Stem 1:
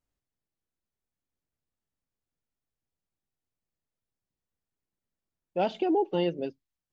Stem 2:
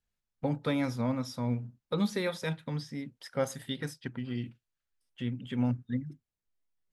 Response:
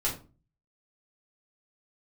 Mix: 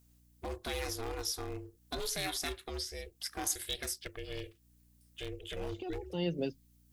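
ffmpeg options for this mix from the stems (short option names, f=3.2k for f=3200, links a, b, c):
-filter_complex "[0:a]lowshelf=f=480:g=7.5,acrossover=split=140[a][b];[b]acompressor=threshold=-32dB:ratio=6[c];[a][c]amix=inputs=2:normalize=0,aeval=exprs='val(0)+0.000562*(sin(2*PI*60*n/s)+sin(2*PI*2*60*n/s)/2+sin(2*PI*3*60*n/s)/3+sin(2*PI*4*60*n/s)/4+sin(2*PI*5*60*n/s)/5)':c=same,volume=0.5dB[d];[1:a]alimiter=level_in=0.5dB:limit=-24dB:level=0:latency=1:release=24,volume=-0.5dB,aeval=exprs='val(0)*sin(2*PI*220*n/s)':c=same,volume=28.5dB,asoftclip=hard,volume=-28.5dB,volume=-4dB,asplit=2[e][f];[f]apad=whole_len=305328[g];[d][g]sidechaincompress=threshold=-56dB:ratio=4:attack=16:release=188[h];[h][e]amix=inputs=2:normalize=0,crystalizer=i=7:c=0"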